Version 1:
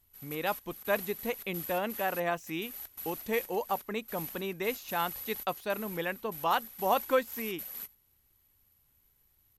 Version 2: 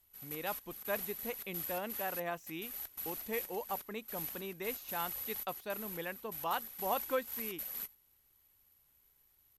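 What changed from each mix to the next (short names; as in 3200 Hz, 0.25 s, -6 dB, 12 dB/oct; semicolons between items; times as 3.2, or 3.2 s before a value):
speech -7.5 dB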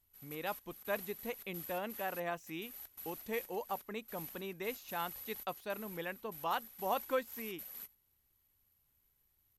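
background -6.5 dB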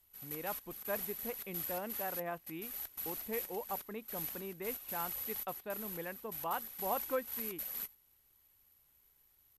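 speech: add air absorption 430 m; background +7.0 dB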